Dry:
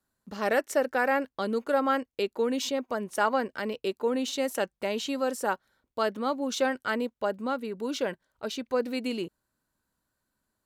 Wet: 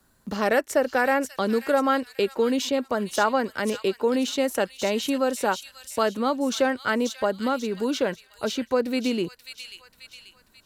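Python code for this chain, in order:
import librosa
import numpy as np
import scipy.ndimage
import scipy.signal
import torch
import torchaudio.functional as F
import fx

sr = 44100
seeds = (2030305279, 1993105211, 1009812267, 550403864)

y = fx.low_shelf(x, sr, hz=96.0, db=10.5)
y = fx.echo_wet_highpass(y, sr, ms=537, feedback_pct=32, hz=3500.0, wet_db=-4.0)
y = fx.band_squash(y, sr, depth_pct=40)
y = y * 10.0 ** (4.0 / 20.0)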